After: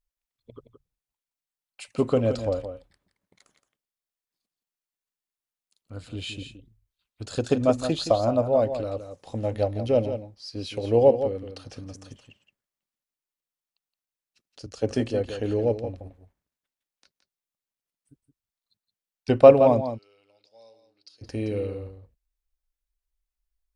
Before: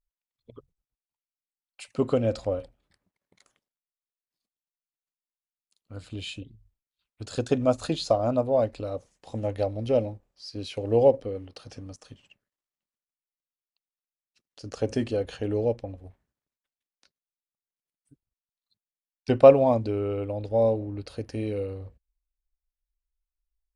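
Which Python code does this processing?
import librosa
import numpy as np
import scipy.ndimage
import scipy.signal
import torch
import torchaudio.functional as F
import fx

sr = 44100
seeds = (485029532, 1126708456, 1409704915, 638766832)

p1 = fx.bandpass_q(x, sr, hz=5200.0, q=4.5, at=(19.8, 21.21), fade=0.02)
p2 = p1 + fx.echo_single(p1, sr, ms=170, db=-9.5, dry=0)
p3 = fx.band_widen(p2, sr, depth_pct=70, at=(14.66, 15.3))
y = p3 * librosa.db_to_amplitude(1.5)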